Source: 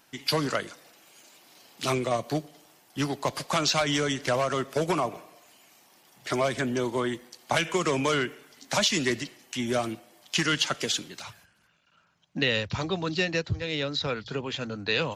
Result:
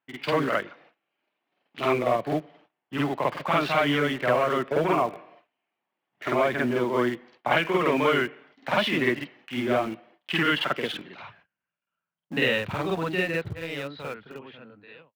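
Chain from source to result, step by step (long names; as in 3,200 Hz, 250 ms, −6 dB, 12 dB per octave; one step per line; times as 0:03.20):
fade-out on the ending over 2.29 s
low-pass filter 2,800 Hz 24 dB per octave
noise gate −55 dBFS, range −23 dB
high-pass filter 190 Hz 6 dB per octave
in parallel at −8.5 dB: centre clipping without the shift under −32.5 dBFS
on the sum: backwards echo 49 ms −3.5 dB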